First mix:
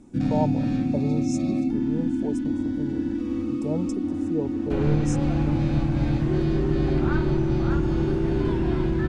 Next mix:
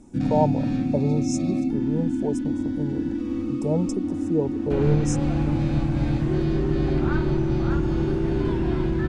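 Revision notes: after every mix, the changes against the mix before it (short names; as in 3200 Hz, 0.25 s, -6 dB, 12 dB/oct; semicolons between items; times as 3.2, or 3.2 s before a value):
speech +5.0 dB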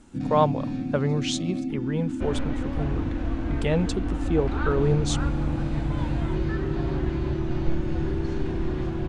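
speech: remove brick-wall FIR band-stop 990–5000 Hz; first sound -5.5 dB; second sound: entry -2.50 s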